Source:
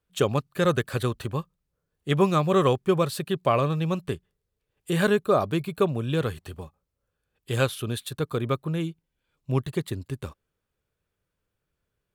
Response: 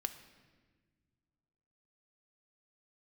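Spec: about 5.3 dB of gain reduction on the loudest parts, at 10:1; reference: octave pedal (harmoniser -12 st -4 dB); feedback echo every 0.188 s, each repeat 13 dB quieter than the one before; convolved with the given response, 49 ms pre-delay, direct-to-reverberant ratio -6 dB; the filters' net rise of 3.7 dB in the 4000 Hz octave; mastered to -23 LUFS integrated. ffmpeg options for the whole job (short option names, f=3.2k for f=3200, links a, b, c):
-filter_complex "[0:a]equalizer=f=4k:t=o:g=4.5,acompressor=threshold=-21dB:ratio=10,aecho=1:1:188|376|564:0.224|0.0493|0.0108,asplit=2[a][b];[1:a]atrim=start_sample=2205,adelay=49[c];[b][c]afir=irnorm=-1:irlink=0,volume=6.5dB[d];[a][d]amix=inputs=2:normalize=0,asplit=2[e][f];[f]asetrate=22050,aresample=44100,atempo=2,volume=-4dB[g];[e][g]amix=inputs=2:normalize=0,volume=-2.5dB"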